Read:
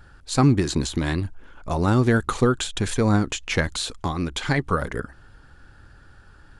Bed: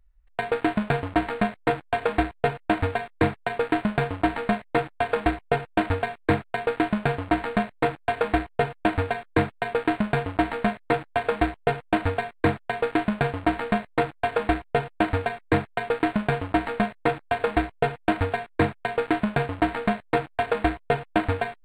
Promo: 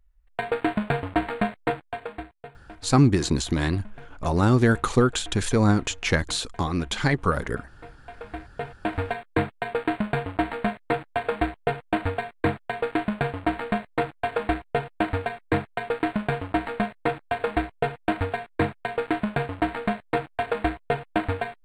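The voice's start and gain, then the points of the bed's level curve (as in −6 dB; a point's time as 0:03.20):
2.55 s, 0.0 dB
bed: 0:01.63 −1 dB
0:02.58 −22.5 dB
0:07.82 −22.5 dB
0:09.05 −2 dB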